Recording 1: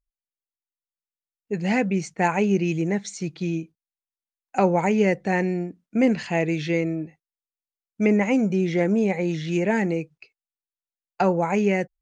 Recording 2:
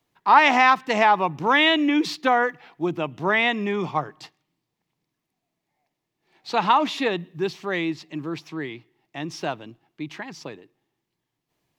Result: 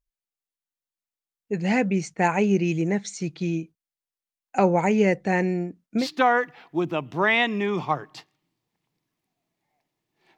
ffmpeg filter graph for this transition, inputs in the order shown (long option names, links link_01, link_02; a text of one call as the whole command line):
ffmpeg -i cue0.wav -i cue1.wav -filter_complex "[0:a]apad=whole_dur=10.37,atrim=end=10.37,atrim=end=6.07,asetpts=PTS-STARTPTS[link_01];[1:a]atrim=start=2.03:end=6.43,asetpts=PTS-STARTPTS[link_02];[link_01][link_02]acrossfade=duration=0.1:curve1=tri:curve2=tri" out.wav